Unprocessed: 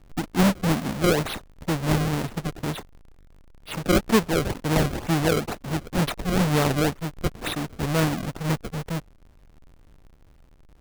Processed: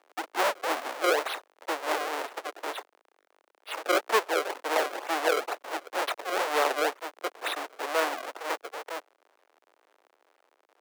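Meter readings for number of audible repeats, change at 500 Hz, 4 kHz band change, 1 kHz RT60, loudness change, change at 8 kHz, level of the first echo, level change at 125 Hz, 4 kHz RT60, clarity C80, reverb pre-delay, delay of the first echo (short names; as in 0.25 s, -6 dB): none, -2.5 dB, -3.0 dB, none, -5.0 dB, -5.0 dB, none, under -40 dB, none, none, none, none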